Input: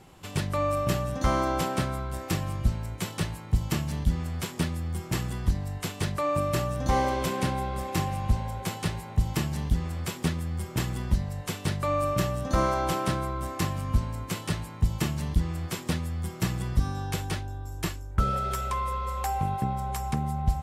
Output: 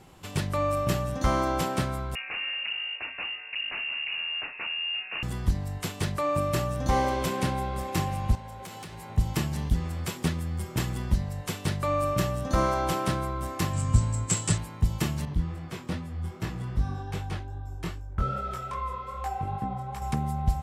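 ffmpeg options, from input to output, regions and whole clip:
-filter_complex "[0:a]asettb=1/sr,asplit=3[s0][s1][s2];[s0]atrim=end=2.154[s3];[s1]atrim=start=2.15:end=5.23,asetpts=PTS-STARTPTS,afade=t=in:d=0.004:c=qsin,afade=t=out:st=3.076:d=0.004:c=qsin,aeval=exprs='0.0447*(abs(mod(val(0)/0.0447+3,4)-2)-1)':c=same,lowpass=f=2500:t=q:w=0.5098,lowpass=f=2500:t=q:w=0.6013,lowpass=f=2500:t=q:w=0.9,lowpass=f=2500:t=q:w=2.563,afreqshift=-2900[s4];[s2]atrim=start=5.226[s5];[s3][s4]acrossfade=d=0.004:c1=hsin:c2=qsin[s6];[s6][s5]acrossfade=d=0.004:c1=qsin:c2=hsin,asettb=1/sr,asplit=3[s7][s8][s9];[s7]atrim=end=8.354[s10];[s8]atrim=start=8.35:end=9.1,asetpts=PTS-STARTPTS,afade=t=in:d=0.004:c=qsin,afade=t=out:st=0.746:d=0.004:c=qsin,lowshelf=f=160:g=-7,acompressor=threshold=0.0158:ratio=12:attack=3.2:release=140:knee=1:detection=peak,volume=59.6,asoftclip=hard,volume=0.0168[s11];[s9]atrim=start=9.096[s12];[s10][s11]acrossfade=d=0.004:c1=hsin:c2=qsin[s13];[s13][s12]acrossfade=d=0.004:c1=qsin:c2=hsin,asettb=1/sr,asplit=3[s14][s15][s16];[s14]atrim=end=13.734[s17];[s15]atrim=start=13.73:end=14.58,asetpts=PTS-STARTPTS,afade=t=in:d=0.004:c=qsin,afade=t=out:st=0.846:d=0.004:c=qsin,lowpass=f=7800:t=q:w=9.1,equalizer=f=120:w=2.2:g=8.5[s18];[s16]atrim=start=14.576[s19];[s17][s18]acrossfade=d=0.004:c1=hsin:c2=qsin[s20];[s20][s19]acrossfade=d=0.004:c1=qsin:c2=hsin,asettb=1/sr,asplit=3[s21][s22][s23];[s21]atrim=end=15.254[s24];[s22]atrim=start=15.25:end=20.02,asetpts=PTS-STARTPTS,afade=t=in:d=0.004:c=qsin,afade=t=out:st=4.766:d=0.004:c=qsin,highshelf=f=4700:g=-11.5,flanger=delay=19:depth=4.5:speed=2.5[s25];[s23]atrim=start=20.016[s26];[s24][s25]acrossfade=d=0.004:c1=hsin:c2=qsin[s27];[s27][s26]acrossfade=d=0.004:c1=qsin:c2=hsin"

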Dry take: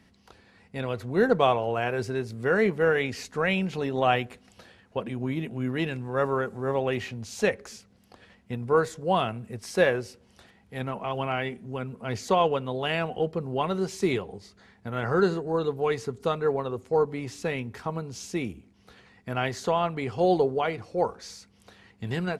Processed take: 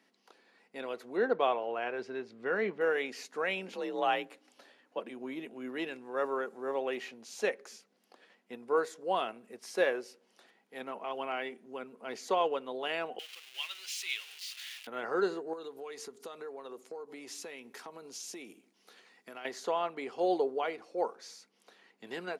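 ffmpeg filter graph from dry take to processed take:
-filter_complex "[0:a]asettb=1/sr,asplit=3[s0][s1][s2];[s0]atrim=end=1.174[s3];[s1]atrim=start=1.17:end=2.81,asetpts=PTS-STARTPTS,afade=t=in:d=0.004:c=qsin,afade=t=out:st=1.636:d=0.004:c=qsin,lowpass=3900,asubboost=boost=6:cutoff=190[s4];[s2]atrim=start=2.806[s5];[s3][s4]acrossfade=d=0.004:c1=hsin:c2=qsin[s6];[s6][s5]acrossfade=d=0.004:c1=qsin:c2=hsin,asettb=1/sr,asplit=3[s7][s8][s9];[s7]atrim=end=3.684[s10];[s8]atrim=start=3.68:end=4.99,asetpts=PTS-STARTPTS,afade=t=in:d=0.004:c=qsin,afade=t=out:st=1.306:d=0.004:c=qsin,highpass=47,afreqshift=49[s11];[s9]atrim=start=4.986[s12];[s10][s11]acrossfade=d=0.004:c1=hsin:c2=qsin[s13];[s13][s12]acrossfade=d=0.004:c1=qsin:c2=hsin,asettb=1/sr,asplit=3[s14][s15][s16];[s14]atrim=end=13.194[s17];[s15]atrim=start=13.19:end=14.87,asetpts=PTS-STARTPTS,afade=t=in:d=0.004:c=qsin,afade=t=out:st=1.676:d=0.004:c=qsin,aeval=exprs='val(0)+0.5*0.0224*sgn(val(0))':c=same,highpass=f=2800:t=q:w=3.1[s18];[s16]atrim=start=14.866[s19];[s17][s18]acrossfade=d=0.004:c1=hsin:c2=qsin[s20];[s20][s19]acrossfade=d=0.004:c1=qsin:c2=hsin,asettb=1/sr,asplit=3[s21][s22][s23];[s21]atrim=end=15.534[s24];[s22]atrim=start=15.53:end=19.45,asetpts=PTS-STARTPTS,afade=t=in:d=0.004:c=qsin,afade=t=out:st=3.916:d=0.004:c=qsin,highshelf=f=3800:g=9.5,acompressor=threshold=0.0251:ratio=12:attack=3.2:release=140:knee=1:detection=peak[s25];[s23]atrim=start=19.446[s26];[s24][s25]acrossfade=d=0.004:c1=hsin:c2=qsin[s27];[s27][s26]acrossfade=d=0.004:c1=qsin:c2=hsin,highpass=f=280:w=0.5412,highpass=f=280:w=1.3066,bandreject=f=7900:w=25,volume=0.473"

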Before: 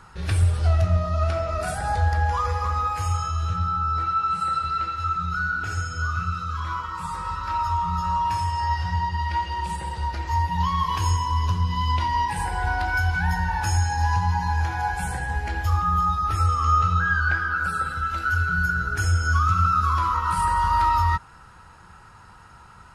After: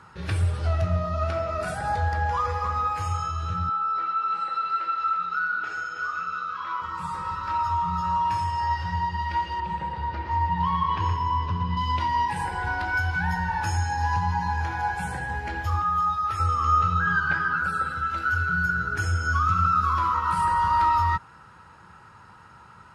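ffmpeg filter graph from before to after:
-filter_complex "[0:a]asettb=1/sr,asplit=3[s0][s1][s2];[s0]atrim=end=3.694[s3];[s1]atrim=start=3.69:end=6.82,asetpts=PTS-STARTPTS,afade=t=in:d=0.004:c=qsin,afade=t=out:st=3.126:d=0.004:c=qsin,highpass=440,lowpass=4600,aecho=1:1:324:0.422,atrim=end_sample=138033[s4];[s2]atrim=start=6.816[s5];[s3][s4]acrossfade=d=0.004:c1=hsin:c2=qsin[s6];[s6][s5]acrossfade=d=0.004:c1=qsin:c2=hsin,asettb=1/sr,asplit=3[s7][s8][s9];[s7]atrim=end=9.604[s10];[s8]atrim=start=9.6:end=11.77,asetpts=PTS-STARTPTS,afade=t=in:d=0.004:c=qsin,afade=t=out:st=2.166:d=0.004:c=qsin,lowpass=4600,aemphasis=mode=reproduction:type=50kf,aecho=1:1:120:0.473,atrim=end_sample=95697[s11];[s9]atrim=start=11.766[s12];[s10][s11]acrossfade=d=0.004:c1=hsin:c2=qsin[s13];[s13][s12]acrossfade=d=0.004:c1=qsin:c2=hsin,asettb=1/sr,asplit=3[s14][s15][s16];[s14]atrim=end=15.824[s17];[s15]atrim=start=15.82:end=16.4,asetpts=PTS-STARTPTS,afade=t=in:d=0.004:c=qsin,afade=t=out:st=0.576:d=0.004:c=qsin,highpass=f=120:p=1,equalizer=f=250:t=o:w=1.2:g=-13[s18];[s16]atrim=start=16.396[s19];[s17][s18]acrossfade=d=0.004:c1=hsin:c2=qsin[s20];[s20][s19]acrossfade=d=0.004:c1=qsin:c2=hsin,asettb=1/sr,asplit=3[s21][s22][s23];[s21]atrim=end=17.064[s24];[s22]atrim=start=17.06:end=17.62,asetpts=PTS-STARTPTS,afade=t=in:d=0.004:c=qsin,afade=t=out:st=0.556:d=0.004:c=qsin,equalizer=f=150:t=o:w=0.43:g=7.5,aecho=1:1:7.1:0.74,atrim=end_sample=24696[s25];[s23]atrim=start=17.616[s26];[s24][s25]acrossfade=d=0.004:c1=hsin:c2=qsin[s27];[s27][s26]acrossfade=d=0.004:c1=qsin:c2=hsin,highpass=100,highshelf=f=5300:g=-9.5,bandreject=f=720:w=12"

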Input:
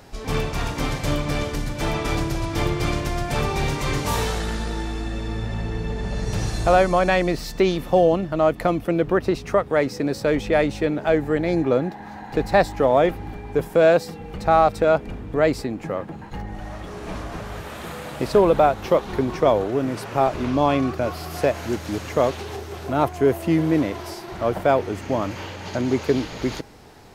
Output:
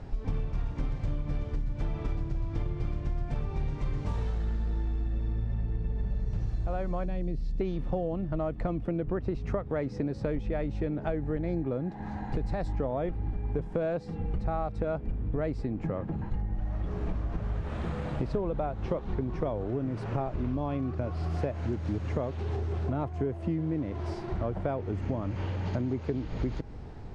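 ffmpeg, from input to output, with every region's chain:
-filter_complex "[0:a]asettb=1/sr,asplit=3[s0][s1][s2];[s0]atrim=end=7.054[s3];[s1]atrim=start=7.05:end=7.61,asetpts=PTS-STARTPTS,afade=t=in:d=0.004:c=qsin,afade=t=out:st=0.556:d=0.004:c=qsin,acrossover=split=4700[s4][s5];[s5]acompressor=threshold=0.00562:ratio=4:attack=1:release=60[s6];[s4][s6]amix=inputs=2:normalize=0,equalizer=f=1300:t=o:w=2.4:g=-14[s7];[s2]atrim=start=7.606[s8];[s3][s7]acrossfade=d=0.004:c1=hsin:c2=qsin[s9];[s9][s8]acrossfade=d=0.004:c1=qsin:c2=hsin,asettb=1/sr,asplit=3[s10][s11][s12];[s10]atrim=end=11.874[s13];[s11]atrim=start=11.87:end=12.68,asetpts=PTS-STARTPTS,afade=t=in:d=0.004:c=qsin,afade=t=out:st=0.806:d=0.004:c=qsin,highshelf=f=7000:g=12,acompressor=threshold=0.0794:ratio=2:attack=3.2:release=140:knee=1:detection=peak[s14];[s12]atrim=start=12.676[s15];[s13][s14]acrossfade=d=0.004:c1=hsin:c2=qsin[s16];[s16][s15]acrossfade=d=0.004:c1=qsin:c2=hsin,lowpass=f=9400:w=0.5412,lowpass=f=9400:w=1.3066,aemphasis=mode=reproduction:type=riaa,acompressor=threshold=0.0794:ratio=10,volume=0.562"

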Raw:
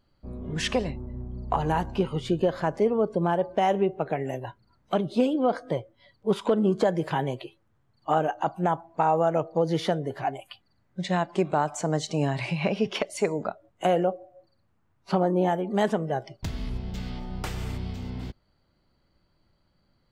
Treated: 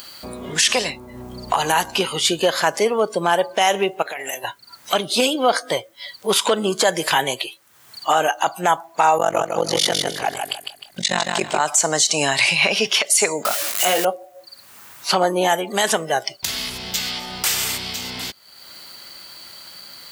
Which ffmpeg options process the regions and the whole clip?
-filter_complex "[0:a]asettb=1/sr,asplit=3[s0][s1][s2];[s0]atrim=end=4.024[s3];[s1]atrim=start=4.02:end=4.44,asetpts=PTS-STARTPTS,afade=t=in:d=0.004:c=qsin,afade=t=out:st=0.416:d=0.004:c=qsin,equalizer=f=95:w=0.32:g=-15,bandreject=f=97.78:t=h:w=4,bandreject=f=195.56:t=h:w=4,bandreject=f=293.34:t=h:w=4,bandreject=f=391.12:t=h:w=4,bandreject=f=488.9:t=h:w=4,bandreject=f=586.68:t=h:w=4,bandreject=f=684.46:t=h:w=4,bandreject=f=782.24:t=h:w=4,bandreject=f=880.02:t=h:w=4,bandreject=f=977.8:t=h:w=4,bandreject=f=1075.58:t=h:w=4,bandreject=f=1173.36:t=h:w=4,bandreject=f=1271.14:t=h:w=4,acompressor=threshold=0.02:ratio=10:attack=3.2:release=140:knee=1:detection=peak[s4];[s2]atrim=start=4.436[s5];[s3][s4]acrossfade=d=0.004:c1=hsin:c2=qsin[s6];[s6][s5]acrossfade=d=0.004:c1=qsin:c2=hsin,asettb=1/sr,asplit=3[s7][s8][s9];[s7]atrim=end=9.184[s10];[s8]atrim=start=9.18:end=11.6,asetpts=PTS-STARTPTS,afade=t=in:d=0.004:c=qsin,afade=t=out:st=2.416:d=0.004:c=qsin,lowshelf=f=170:g=9,tremolo=f=47:d=1,aecho=1:1:154|308|462|616:0.531|0.149|0.0416|0.0117,atrim=end_sample=106722[s11];[s9]atrim=start=11.596[s12];[s10][s11]acrossfade=d=0.004:c1=hsin:c2=qsin[s13];[s13][s12]acrossfade=d=0.004:c1=qsin:c2=hsin,asettb=1/sr,asplit=3[s14][s15][s16];[s14]atrim=end=13.454[s17];[s15]atrim=start=13.45:end=14.05,asetpts=PTS-STARTPTS,afade=t=in:d=0.004:c=qsin,afade=t=out:st=0.596:d=0.004:c=qsin,aeval=exprs='val(0)+0.5*0.015*sgn(val(0))':c=same,equalizer=f=100:t=o:w=1:g=-6.5,asplit=2[s18][s19];[s19]adelay=21,volume=0.562[s20];[s18][s20]amix=inputs=2:normalize=0,atrim=end_sample=26460[s21];[s16]atrim=start=14.046[s22];[s17][s21]acrossfade=d=0.004:c1=hsin:c2=qsin[s23];[s23][s22]acrossfade=d=0.004:c1=qsin:c2=hsin,aderivative,acompressor=mode=upward:threshold=0.002:ratio=2.5,alimiter=level_in=47.3:limit=0.891:release=50:level=0:latency=1,volume=0.562"

